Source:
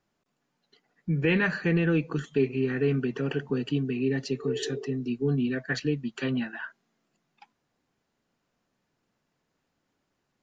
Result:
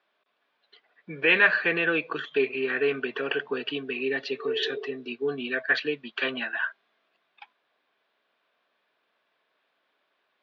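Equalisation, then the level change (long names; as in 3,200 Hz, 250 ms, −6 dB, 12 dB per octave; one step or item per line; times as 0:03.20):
high-frequency loss of the air 93 metres
loudspeaker in its box 420–4,200 Hz, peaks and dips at 420 Hz +4 dB, 630 Hz +8 dB, 1,100 Hz +7 dB, 1,600 Hz +7 dB, 2,400 Hz +6 dB, 3,500 Hz +8 dB
high-shelf EQ 2,500 Hz +9 dB
0.0 dB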